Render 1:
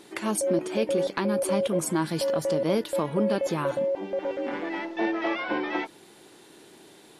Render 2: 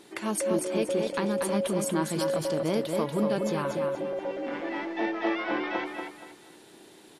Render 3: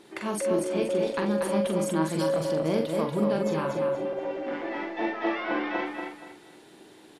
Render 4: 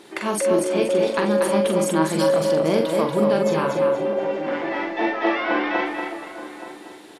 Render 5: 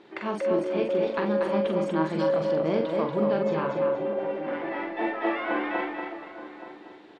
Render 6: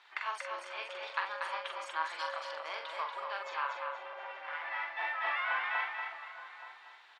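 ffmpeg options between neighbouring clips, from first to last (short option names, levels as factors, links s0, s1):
-af "aecho=1:1:237|474|711|948:0.562|0.169|0.0506|0.0152,volume=0.75"
-filter_complex "[0:a]highshelf=f=4800:g=-6.5,asplit=2[s0][s1];[s1]adelay=44,volume=0.562[s2];[s0][s2]amix=inputs=2:normalize=0"
-filter_complex "[0:a]lowshelf=f=210:g=-7.5,asplit=2[s0][s1];[s1]adelay=874.6,volume=0.224,highshelf=f=4000:g=-19.7[s2];[s0][s2]amix=inputs=2:normalize=0,volume=2.51"
-af "lowpass=4200,aemphasis=mode=reproduction:type=50kf,volume=0.531"
-af "highpass=f=1000:w=0.5412,highpass=f=1000:w=1.3066"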